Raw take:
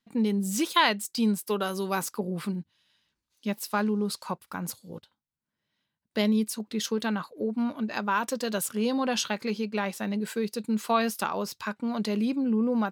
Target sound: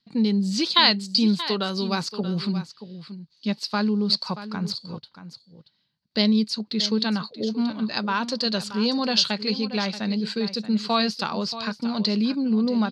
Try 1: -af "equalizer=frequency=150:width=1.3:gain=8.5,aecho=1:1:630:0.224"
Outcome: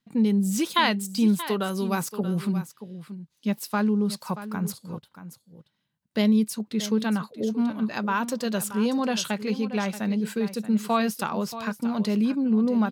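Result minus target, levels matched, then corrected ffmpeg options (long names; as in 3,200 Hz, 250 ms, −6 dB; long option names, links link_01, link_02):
4,000 Hz band −9.0 dB
-af "lowpass=frequency=4500:width_type=q:width=8.8,equalizer=frequency=150:width=1.3:gain=8.5,aecho=1:1:630:0.224"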